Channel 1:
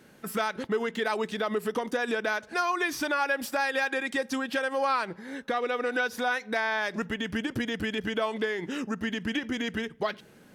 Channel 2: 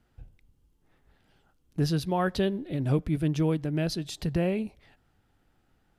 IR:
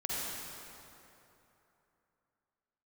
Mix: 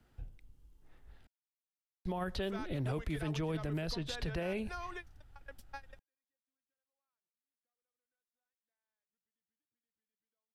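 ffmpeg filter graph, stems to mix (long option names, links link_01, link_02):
-filter_complex "[0:a]adelay=2150,volume=-16.5dB[link_01];[1:a]asubboost=boost=7.5:cutoff=79,volume=0dB,asplit=3[link_02][link_03][link_04];[link_02]atrim=end=1.27,asetpts=PTS-STARTPTS,afade=type=out:start_time=1.266:duration=0.004:curve=hsin[link_05];[link_03]atrim=start=1.27:end=2.05,asetpts=PTS-STARTPTS,volume=0[link_06];[link_04]atrim=start=2.05,asetpts=PTS-STARTPTS,afade=type=in:duration=0.004:curve=hsin[link_07];[link_05][link_06][link_07]concat=n=3:v=0:a=1,asplit=2[link_08][link_09];[link_09]apad=whole_len=559877[link_10];[link_01][link_10]sidechaingate=range=-53dB:threshold=-50dB:ratio=16:detection=peak[link_11];[link_11][link_08]amix=inputs=2:normalize=0,acrossover=split=200|420|4900[link_12][link_13][link_14][link_15];[link_12]acompressor=threshold=-37dB:ratio=4[link_16];[link_13]acompressor=threshold=-43dB:ratio=4[link_17];[link_14]acompressor=threshold=-34dB:ratio=4[link_18];[link_15]acompressor=threshold=-57dB:ratio=4[link_19];[link_16][link_17][link_18][link_19]amix=inputs=4:normalize=0,alimiter=level_in=4dB:limit=-24dB:level=0:latency=1:release=20,volume=-4dB"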